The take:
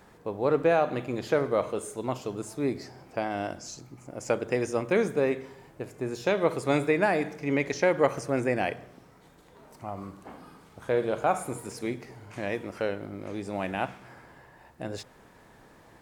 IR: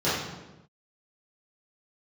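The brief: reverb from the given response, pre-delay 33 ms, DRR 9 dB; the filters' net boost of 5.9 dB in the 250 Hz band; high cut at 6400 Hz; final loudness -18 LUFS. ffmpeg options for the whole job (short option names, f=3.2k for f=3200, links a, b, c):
-filter_complex "[0:a]lowpass=6.4k,equalizer=f=250:t=o:g=7.5,asplit=2[a][b];[1:a]atrim=start_sample=2205,adelay=33[c];[b][c]afir=irnorm=-1:irlink=0,volume=-24dB[d];[a][d]amix=inputs=2:normalize=0,volume=7.5dB"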